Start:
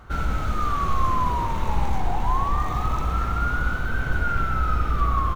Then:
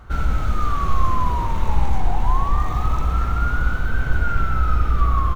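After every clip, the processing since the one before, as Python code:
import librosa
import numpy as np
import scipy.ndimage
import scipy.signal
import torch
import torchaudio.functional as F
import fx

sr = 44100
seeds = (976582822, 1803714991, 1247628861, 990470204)

y = fx.low_shelf(x, sr, hz=88.0, db=7.0)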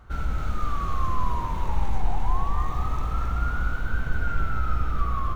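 y = x + 10.0 ** (-6.0 / 20.0) * np.pad(x, (int(268 * sr / 1000.0), 0))[:len(x)]
y = y * librosa.db_to_amplitude(-7.0)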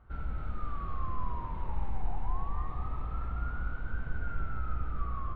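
y = fx.air_absorb(x, sr, metres=380.0)
y = y * librosa.db_to_amplitude(-8.5)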